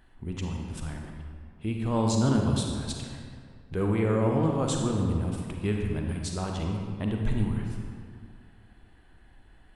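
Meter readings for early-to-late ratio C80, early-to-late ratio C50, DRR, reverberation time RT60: 3.5 dB, 2.0 dB, 1.0 dB, 2.1 s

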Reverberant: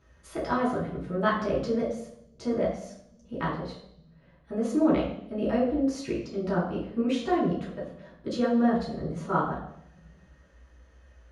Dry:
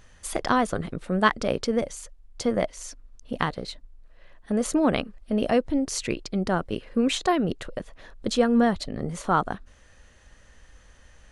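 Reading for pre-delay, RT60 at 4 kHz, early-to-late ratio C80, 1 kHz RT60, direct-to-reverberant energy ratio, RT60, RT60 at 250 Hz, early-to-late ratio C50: 3 ms, 0.85 s, 8.5 dB, 0.70 s, -8.0 dB, 0.75 s, 1.9 s, 5.5 dB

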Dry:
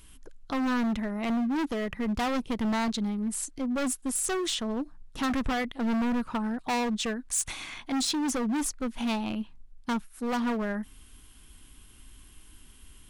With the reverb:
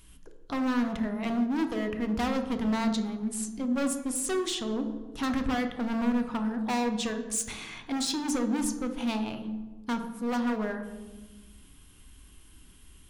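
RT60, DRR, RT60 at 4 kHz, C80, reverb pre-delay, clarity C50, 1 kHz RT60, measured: 1.2 s, 6.0 dB, 0.75 s, 10.5 dB, 3 ms, 8.5 dB, 1.1 s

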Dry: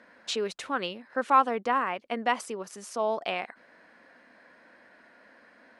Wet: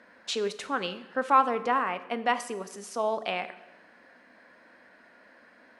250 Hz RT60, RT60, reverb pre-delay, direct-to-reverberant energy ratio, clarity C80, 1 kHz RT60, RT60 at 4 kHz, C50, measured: 1.4 s, 1.1 s, 9 ms, 11.5 dB, 16.0 dB, 1.0 s, 0.90 s, 14.0 dB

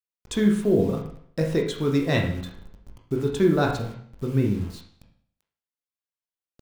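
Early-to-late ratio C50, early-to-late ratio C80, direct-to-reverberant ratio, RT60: 6.0 dB, 9.5 dB, 0.5 dB, 0.60 s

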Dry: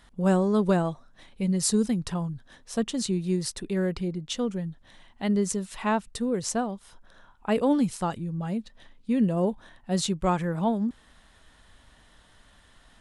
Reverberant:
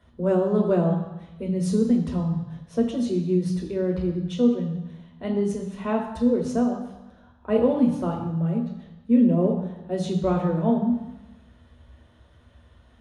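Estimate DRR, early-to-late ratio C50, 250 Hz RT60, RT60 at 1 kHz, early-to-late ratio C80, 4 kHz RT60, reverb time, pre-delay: 0.0 dB, 6.0 dB, 1.0 s, 1.1 s, 8.5 dB, 1.1 s, 1.0 s, 3 ms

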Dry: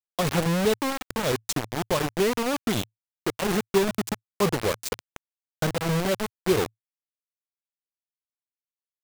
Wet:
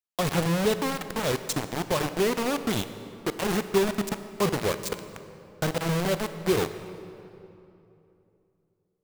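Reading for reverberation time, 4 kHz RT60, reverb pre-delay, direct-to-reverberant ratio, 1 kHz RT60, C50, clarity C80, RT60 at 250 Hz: 2.9 s, 1.9 s, 24 ms, 10.5 dB, 2.8 s, 11.0 dB, 11.5 dB, 3.3 s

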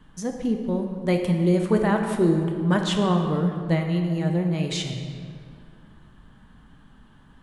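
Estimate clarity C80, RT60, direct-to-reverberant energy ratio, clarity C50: 6.0 dB, 2.2 s, 3.0 dB, 5.0 dB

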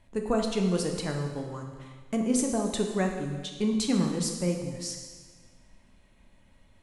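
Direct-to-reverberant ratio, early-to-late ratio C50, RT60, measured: 2.5 dB, 4.5 dB, 1.5 s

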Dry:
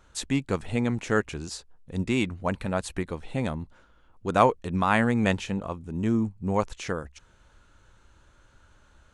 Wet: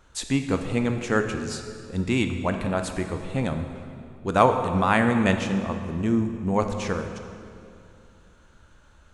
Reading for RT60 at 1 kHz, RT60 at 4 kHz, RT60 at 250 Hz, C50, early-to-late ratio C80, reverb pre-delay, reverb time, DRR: 2.4 s, 1.9 s, 2.9 s, 7.0 dB, 8.0 dB, 14 ms, 2.6 s, 6.0 dB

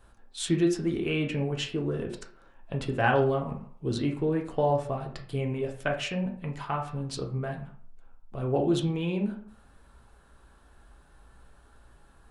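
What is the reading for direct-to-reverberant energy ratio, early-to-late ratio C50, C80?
1.0 dB, 9.0 dB, 13.0 dB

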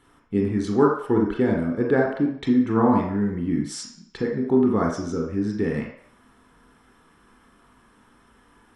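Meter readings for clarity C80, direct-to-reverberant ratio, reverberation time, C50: 7.5 dB, -1.0 dB, 0.65 s, 3.0 dB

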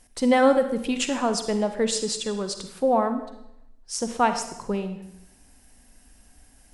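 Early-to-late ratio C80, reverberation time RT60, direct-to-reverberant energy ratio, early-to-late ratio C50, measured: 11.5 dB, 0.85 s, 8.0 dB, 9.0 dB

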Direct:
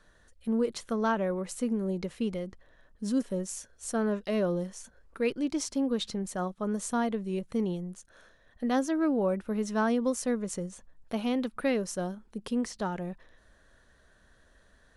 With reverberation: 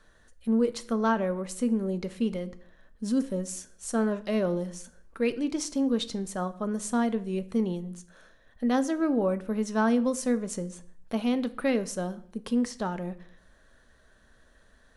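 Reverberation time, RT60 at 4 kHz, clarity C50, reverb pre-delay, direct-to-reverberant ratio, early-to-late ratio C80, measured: 0.60 s, 0.50 s, 17.5 dB, 4 ms, 11.0 dB, 21.0 dB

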